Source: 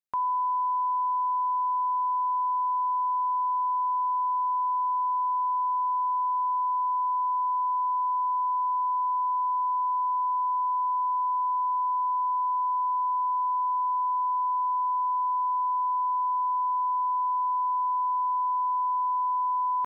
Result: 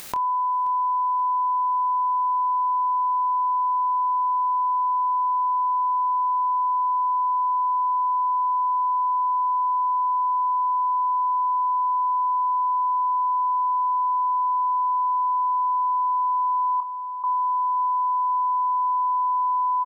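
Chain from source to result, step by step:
upward compression, threshold −28 dBFS
0:16.80–0:17.24: Chebyshev low-pass with heavy ripple 970 Hz, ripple 6 dB
double-tracking delay 26 ms −10 dB
repeating echo 529 ms, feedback 49%, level −18 dB
envelope flattener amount 50%

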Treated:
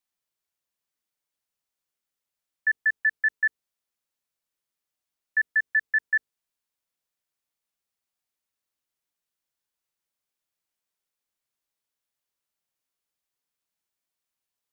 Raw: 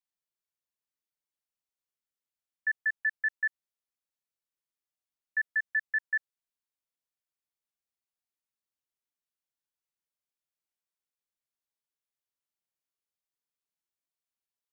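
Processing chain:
mains-hum notches 50/100/150/200/250/300/350/400/450 Hz
level +6 dB

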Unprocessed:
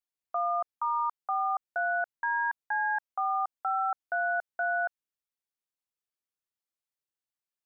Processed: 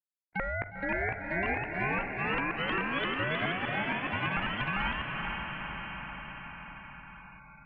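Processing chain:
pitch shifter swept by a sawtooth +4 semitones, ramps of 397 ms
high-pass filter 580 Hz 24 dB per octave
noise gate −30 dBFS, range −41 dB
in parallel at +1.5 dB: downward compressor, threshold −38 dBFS, peak gain reduction 11 dB
on the sum: ring modulation 680 Hz
feedback delay with all-pass diffusion 486 ms, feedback 48%, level −9.5 dB
on a send at −20.5 dB: convolution reverb RT60 0.30 s, pre-delay 38 ms
on the sum: delay with pitch and tempo change per echo 573 ms, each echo +2 semitones, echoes 2
high-frequency loss of the air 350 metres
every bin compressed towards the loudest bin 2 to 1

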